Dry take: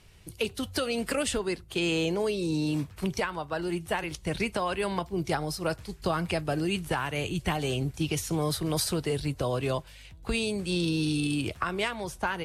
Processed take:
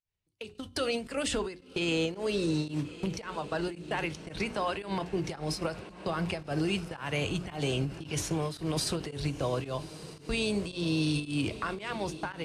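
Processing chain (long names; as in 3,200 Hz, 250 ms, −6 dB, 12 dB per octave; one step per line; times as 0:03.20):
noise gate −35 dBFS, range −35 dB
low-pass filter 8,400 Hz 12 dB per octave
mains-hum notches 60/120/180/240/300/360/420 Hz
brickwall limiter −24 dBFS, peak gain reduction 9.5 dB
feedback delay with all-pass diffusion 1,214 ms, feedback 58%, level −15 dB
fake sidechain pumping 112 BPM, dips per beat 1, −19 dB, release 184 ms
convolution reverb RT60 0.40 s, pre-delay 4 ms, DRR 19 dB
every ending faded ahead of time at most 150 dB per second
level +2.5 dB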